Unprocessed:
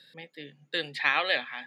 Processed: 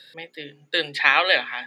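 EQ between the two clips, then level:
parametric band 190 Hz −14 dB 0.46 octaves
mains-hum notches 60/120/180/240/300/360/420 Hz
+8.0 dB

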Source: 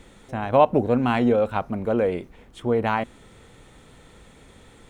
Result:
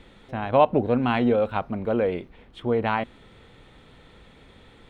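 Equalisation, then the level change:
high shelf with overshoot 5,100 Hz −9.5 dB, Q 1.5
−1.5 dB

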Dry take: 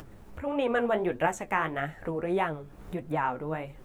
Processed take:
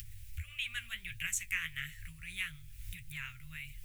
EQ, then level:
elliptic band-stop filter 100–2,300 Hz, stop band 50 dB
high-shelf EQ 7,400 Hz +10.5 dB
+3.5 dB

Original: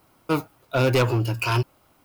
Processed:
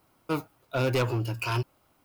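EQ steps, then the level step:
no EQ move
−6.0 dB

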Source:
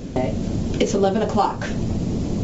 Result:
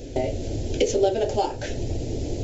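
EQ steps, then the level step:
phaser with its sweep stopped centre 470 Hz, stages 4
0.0 dB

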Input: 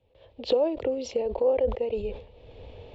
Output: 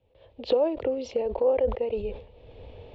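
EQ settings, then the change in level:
dynamic equaliser 1,400 Hz, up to +4 dB, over −39 dBFS, Q 0.99
high-frequency loss of the air 100 metres
0.0 dB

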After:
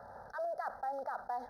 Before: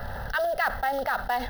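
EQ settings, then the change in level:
high-pass filter 1,300 Hz 6 dB per octave
Butterworth band-reject 2,700 Hz, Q 0.5
head-to-tape spacing loss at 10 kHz 21 dB
−2.0 dB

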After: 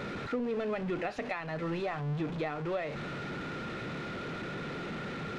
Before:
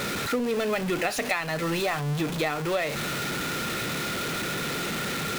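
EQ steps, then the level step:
head-to-tape spacing loss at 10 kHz 29 dB
−5.0 dB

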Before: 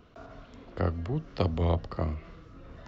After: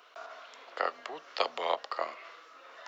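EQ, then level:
Bessel high-pass filter 910 Hz, order 4
+8.0 dB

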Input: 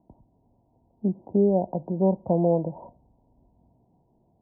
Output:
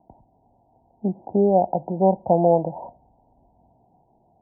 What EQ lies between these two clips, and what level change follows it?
low-pass with resonance 800 Hz, resonance Q 4.6
0.0 dB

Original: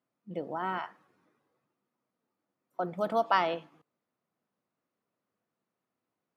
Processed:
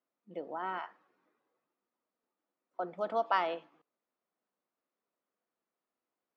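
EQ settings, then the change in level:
high-pass filter 300 Hz 12 dB per octave
high-frequency loss of the air 110 metres
−3.0 dB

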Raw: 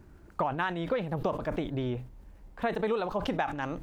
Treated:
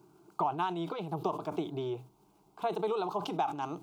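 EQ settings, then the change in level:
high-pass filter 210 Hz 12 dB per octave
phaser with its sweep stopped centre 360 Hz, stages 8
+1.5 dB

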